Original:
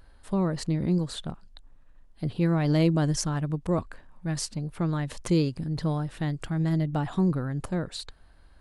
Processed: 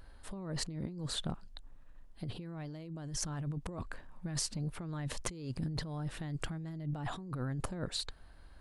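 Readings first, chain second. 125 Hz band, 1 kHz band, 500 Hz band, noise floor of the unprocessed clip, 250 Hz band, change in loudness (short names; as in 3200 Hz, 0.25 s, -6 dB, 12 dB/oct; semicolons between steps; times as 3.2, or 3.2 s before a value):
-12.0 dB, -10.5 dB, -15.0 dB, -54 dBFS, -14.5 dB, -12.0 dB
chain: negative-ratio compressor -33 dBFS, ratio -1; gain -6 dB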